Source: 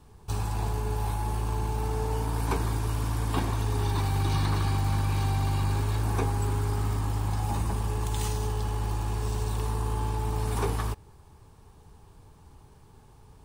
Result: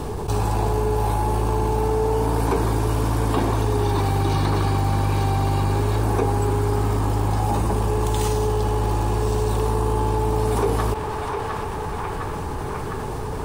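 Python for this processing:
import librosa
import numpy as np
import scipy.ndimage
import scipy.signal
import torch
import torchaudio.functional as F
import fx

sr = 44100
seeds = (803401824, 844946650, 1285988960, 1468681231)

p1 = fx.peak_eq(x, sr, hz=470.0, db=9.5, octaves=1.9)
p2 = p1 + fx.echo_banded(p1, sr, ms=707, feedback_pct=71, hz=1600.0, wet_db=-15.0, dry=0)
y = fx.env_flatten(p2, sr, amount_pct=70)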